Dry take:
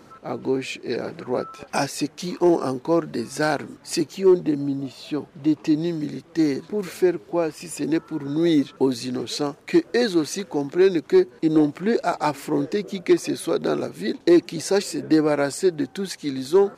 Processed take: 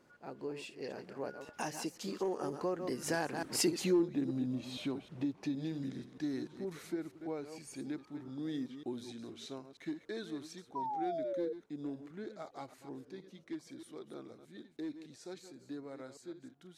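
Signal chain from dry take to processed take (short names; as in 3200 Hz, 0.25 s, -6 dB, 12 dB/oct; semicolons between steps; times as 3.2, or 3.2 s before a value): reverse delay 0.144 s, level -11 dB; Doppler pass-by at 3.76, 29 m/s, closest 4.9 m; compressor 3:1, threshold -44 dBFS, peak gain reduction 20.5 dB; painted sound fall, 10.75–11.53, 460–1000 Hz -47 dBFS; gain +9.5 dB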